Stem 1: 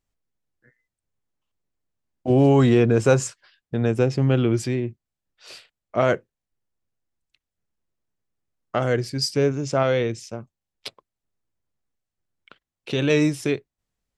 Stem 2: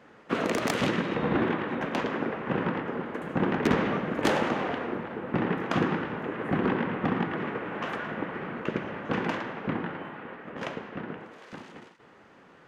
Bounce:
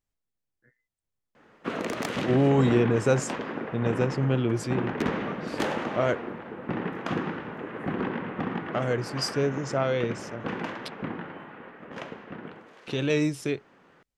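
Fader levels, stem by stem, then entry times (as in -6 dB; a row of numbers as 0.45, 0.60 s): -5.5, -3.5 dB; 0.00, 1.35 s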